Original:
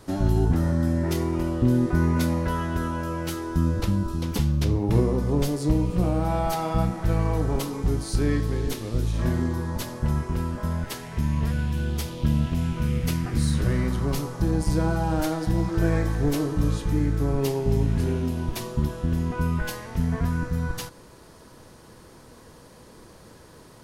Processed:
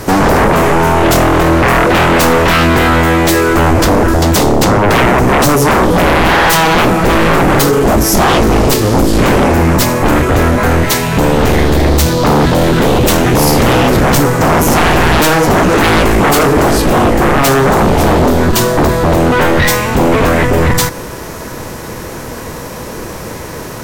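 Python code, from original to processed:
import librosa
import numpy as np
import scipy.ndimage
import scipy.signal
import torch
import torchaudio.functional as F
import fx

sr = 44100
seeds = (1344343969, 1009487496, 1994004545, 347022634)

y = fx.formant_shift(x, sr, semitones=4)
y = fx.fold_sine(y, sr, drive_db=19, ceiling_db=-7.0)
y = F.gain(torch.from_numpy(y), 1.5).numpy()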